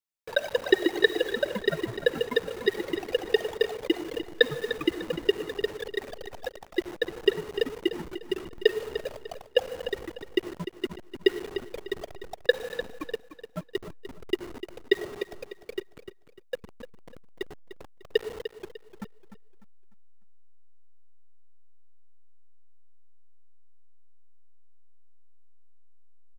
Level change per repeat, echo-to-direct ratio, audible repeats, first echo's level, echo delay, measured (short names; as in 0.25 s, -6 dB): -9.5 dB, -11.0 dB, 3, -11.5 dB, 0.299 s